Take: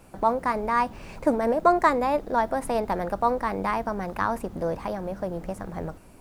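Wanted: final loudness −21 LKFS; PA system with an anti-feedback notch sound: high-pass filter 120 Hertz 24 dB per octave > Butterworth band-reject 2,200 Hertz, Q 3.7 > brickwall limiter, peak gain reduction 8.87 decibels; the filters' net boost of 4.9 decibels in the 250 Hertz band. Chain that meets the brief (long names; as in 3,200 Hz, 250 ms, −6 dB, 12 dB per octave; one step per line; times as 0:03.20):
high-pass filter 120 Hz 24 dB per octave
Butterworth band-reject 2,200 Hz, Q 3.7
parametric band 250 Hz +6 dB
level +6 dB
brickwall limiter −9 dBFS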